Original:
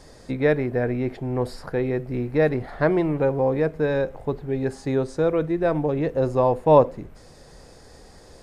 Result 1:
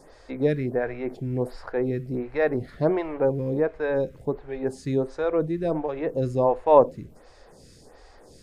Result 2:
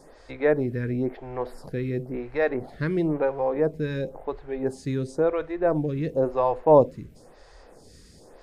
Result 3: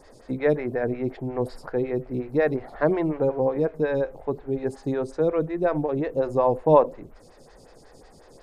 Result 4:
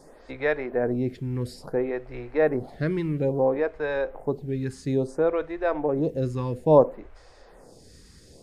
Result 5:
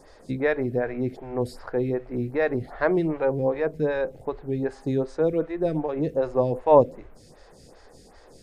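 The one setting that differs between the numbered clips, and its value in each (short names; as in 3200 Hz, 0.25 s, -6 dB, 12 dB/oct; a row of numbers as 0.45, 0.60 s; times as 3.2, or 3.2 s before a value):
photocell phaser, rate: 1.4, 0.97, 5.5, 0.59, 2.6 Hz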